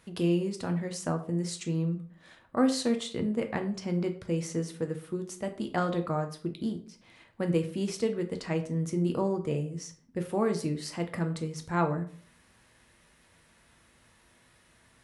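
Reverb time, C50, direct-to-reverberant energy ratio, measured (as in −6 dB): 0.45 s, 12.0 dB, 5.5 dB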